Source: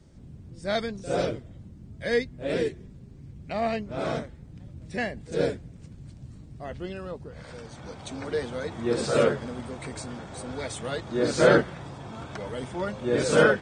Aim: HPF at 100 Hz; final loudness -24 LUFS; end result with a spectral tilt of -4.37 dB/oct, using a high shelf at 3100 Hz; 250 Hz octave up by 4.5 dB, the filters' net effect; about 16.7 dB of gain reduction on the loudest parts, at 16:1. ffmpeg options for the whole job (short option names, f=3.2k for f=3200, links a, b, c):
-af "highpass=100,equalizer=f=250:t=o:g=6,highshelf=f=3.1k:g=8.5,acompressor=threshold=-28dB:ratio=16,volume=10.5dB"